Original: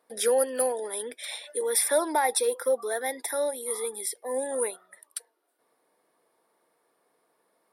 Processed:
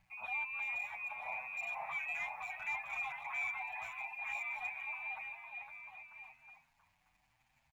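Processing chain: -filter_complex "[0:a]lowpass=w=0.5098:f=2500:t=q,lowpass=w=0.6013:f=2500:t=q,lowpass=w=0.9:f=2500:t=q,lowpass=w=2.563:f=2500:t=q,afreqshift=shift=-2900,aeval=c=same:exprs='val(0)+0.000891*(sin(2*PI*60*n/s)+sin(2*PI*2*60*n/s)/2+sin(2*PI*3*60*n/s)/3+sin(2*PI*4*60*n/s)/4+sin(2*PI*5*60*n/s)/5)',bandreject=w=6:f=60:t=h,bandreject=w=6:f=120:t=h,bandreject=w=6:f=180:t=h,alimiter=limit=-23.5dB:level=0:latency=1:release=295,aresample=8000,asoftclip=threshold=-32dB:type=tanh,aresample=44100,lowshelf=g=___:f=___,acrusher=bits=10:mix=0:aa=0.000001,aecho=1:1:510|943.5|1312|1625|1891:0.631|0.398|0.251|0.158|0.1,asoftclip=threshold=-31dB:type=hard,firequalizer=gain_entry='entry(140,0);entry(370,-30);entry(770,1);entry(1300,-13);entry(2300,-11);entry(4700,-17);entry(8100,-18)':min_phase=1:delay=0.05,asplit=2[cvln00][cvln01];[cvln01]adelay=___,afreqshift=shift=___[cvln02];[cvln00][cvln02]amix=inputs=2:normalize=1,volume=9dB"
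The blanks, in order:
-9, 480, 7.7, 0.85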